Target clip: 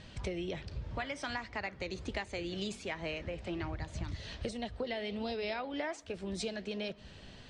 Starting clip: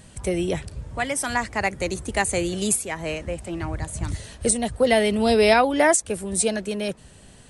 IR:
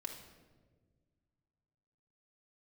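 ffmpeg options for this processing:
-filter_complex "[0:a]lowpass=f=5100:w=0.5412,lowpass=f=5100:w=1.3066,equalizer=f=3700:t=o:w=1.9:g=5,acompressor=threshold=0.0282:ratio=10,flanger=delay=2.2:depth=9.2:regen=-86:speed=1.3:shape=sinusoidal,asplit=2[s0][s1];[1:a]atrim=start_sample=2205[s2];[s1][s2]afir=irnorm=-1:irlink=0,volume=0.168[s3];[s0][s3]amix=inputs=2:normalize=0"

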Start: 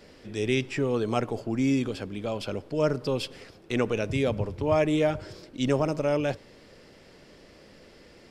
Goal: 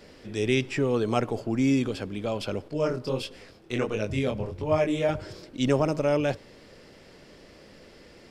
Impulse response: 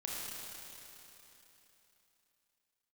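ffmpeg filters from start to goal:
-filter_complex "[0:a]asettb=1/sr,asplit=3[s0][s1][s2];[s0]atrim=end=2.684[s3];[s1]atrim=start=2.68:end=5.09,asetpts=PTS-STARTPTS,afade=t=in:d=0.004:c=qsin,afade=t=out:st=2.406:d=0.004:c=qsin,flanger=delay=19:depth=5.6:speed=1.5[s4];[s2]atrim=start=5.086[s5];[s3][s4]acrossfade=d=0.004:c1=hsin:c2=qsin[s6];[s6][s5]acrossfade=d=0.004:c1=qsin:c2=hsin,volume=1.19"

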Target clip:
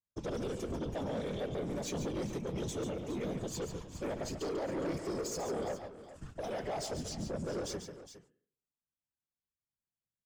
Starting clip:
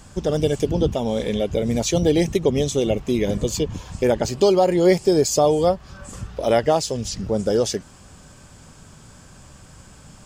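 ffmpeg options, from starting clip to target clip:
-af "agate=range=0.00398:threshold=0.0224:ratio=16:detection=peak,highpass=41,bandreject=f=211.5:t=h:w=4,bandreject=f=423:t=h:w=4,bandreject=f=634.5:t=h:w=4,bandreject=f=846:t=h:w=4,bandreject=f=1057.5:t=h:w=4,bandreject=f=1269:t=h:w=4,bandreject=f=1480.5:t=h:w=4,bandreject=f=1692:t=h:w=4,bandreject=f=1903.5:t=h:w=4,bandreject=f=2115:t=h:w=4,bandreject=f=2326.5:t=h:w=4,bandreject=f=2538:t=h:w=4,bandreject=f=2749.5:t=h:w=4,bandreject=f=2961:t=h:w=4,bandreject=f=3172.5:t=h:w=4,alimiter=limit=0.2:level=0:latency=1:release=87,flanger=delay=1.7:depth=4.5:regen=-42:speed=0.2:shape=triangular,afftfilt=real='hypot(re,im)*cos(2*PI*random(0))':imag='hypot(re,im)*sin(2*PI*random(1))':win_size=512:overlap=0.75,asoftclip=type=tanh:threshold=0.0224,aecho=1:1:141|412:0.376|0.188,adynamicequalizer=threshold=0.00178:dfrequency=2300:dqfactor=0.7:tfrequency=2300:tqfactor=0.7:attack=5:release=100:ratio=0.375:range=1.5:mode=cutabove:tftype=highshelf"

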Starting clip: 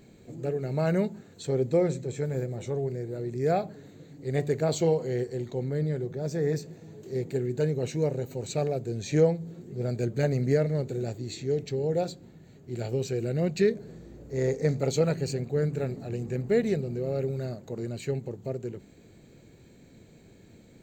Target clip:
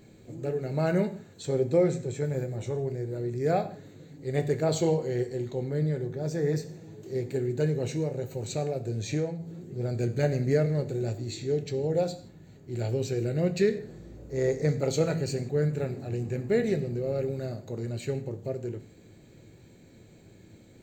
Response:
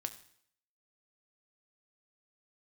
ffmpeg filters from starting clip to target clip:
-filter_complex "[0:a]asettb=1/sr,asplit=3[s0][s1][s2];[s0]atrim=end=7.884[s3];[s1]atrim=start=7.88:end=9.93,asetpts=PTS-STARTPTS,afade=t=in:d=0.004:c=qsin,afade=t=out:st=2.046:d=0.004:c=qsin,acompressor=threshold=0.0501:ratio=6[s4];[s2]atrim=start=9.926[s5];[s3][s4]acrossfade=d=0.004:c1=hsin:c2=qsin[s6];[s6][s5]acrossfade=d=0.004:c1=qsin:c2=hsin[s7];[1:a]atrim=start_sample=2205,afade=t=out:st=0.24:d=0.01,atrim=end_sample=11025[s8];[s7][s8]afir=irnorm=-1:irlink=0,volume=1.19"

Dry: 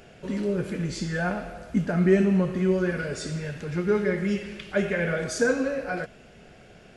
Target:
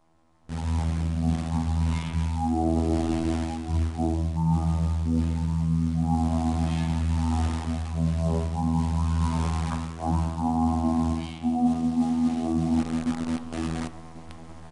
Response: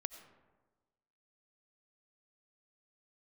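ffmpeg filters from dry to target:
-filter_complex "[0:a]firequalizer=gain_entry='entry(350,0);entry(1900,7);entry(3200,-8)':delay=0.05:min_phase=1,afftfilt=real='hypot(re,im)*cos(PI*b)':imag='0':win_size=1024:overlap=0.75,aecho=1:1:517|1034:0.178|0.0302,acrossover=split=190|870[s0][s1][s2];[s0]alimiter=level_in=2.24:limit=0.0631:level=0:latency=1:release=21,volume=0.447[s3];[s3][s1][s2]amix=inputs=3:normalize=0,acrusher=bits=8:dc=4:mix=0:aa=0.000001,adynamicequalizer=threshold=0.00891:dfrequency=490:dqfactor=1:tfrequency=490:tqfactor=1:attack=5:release=100:ratio=0.375:range=4:mode=boostabove:tftype=bell,areverse,acompressor=threshold=0.02:ratio=8,areverse,asetrate=20859,aresample=44100,bandreject=f=103.8:t=h:w=4,bandreject=f=207.6:t=h:w=4,bandreject=f=311.4:t=h:w=4,bandreject=f=415.2:t=h:w=4,bandreject=f=519:t=h:w=4,bandreject=f=622.8:t=h:w=4,bandreject=f=726.6:t=h:w=4,bandreject=f=830.4:t=h:w=4,bandreject=f=934.2:t=h:w=4,bandreject=f=1038:t=h:w=4,bandreject=f=1141.8:t=h:w=4,bandreject=f=1245.6:t=h:w=4,bandreject=f=1349.4:t=h:w=4,bandreject=f=1453.2:t=h:w=4,bandreject=f=1557:t=h:w=4,bandreject=f=1660.8:t=h:w=4,bandreject=f=1764.6:t=h:w=4,bandreject=f=1868.4:t=h:w=4,bandreject=f=1972.2:t=h:w=4,bandreject=f=2076:t=h:w=4,bandreject=f=2179.8:t=h:w=4,bandreject=f=2283.6:t=h:w=4,bandreject=f=2387.4:t=h:w=4,bandreject=f=2491.2:t=h:w=4,bandreject=f=2595:t=h:w=4,bandreject=f=2698.8:t=h:w=4,bandreject=f=2802.6:t=h:w=4,bandreject=f=2906.4:t=h:w=4,bandreject=f=3010.2:t=h:w=4,bandreject=f=3114:t=h:w=4,bandreject=f=3217.8:t=h:w=4,bandreject=f=3321.6:t=h:w=4,bandreject=f=3425.4:t=h:w=4,bandreject=f=3529.2:t=h:w=4,bandreject=f=3633:t=h:w=4,dynaudnorm=f=360:g=3:m=2.99,agate=range=0.282:threshold=0.00562:ratio=16:detection=peak,volume=1.33"

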